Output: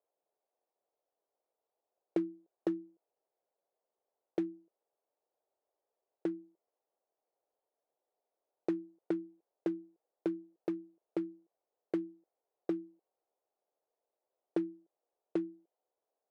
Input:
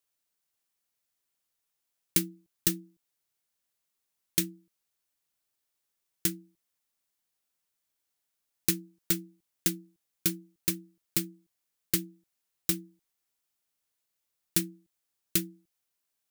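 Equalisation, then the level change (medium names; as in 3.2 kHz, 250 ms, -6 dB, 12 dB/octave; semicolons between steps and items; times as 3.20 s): Butterworth band-pass 560 Hz, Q 1.5; +12.0 dB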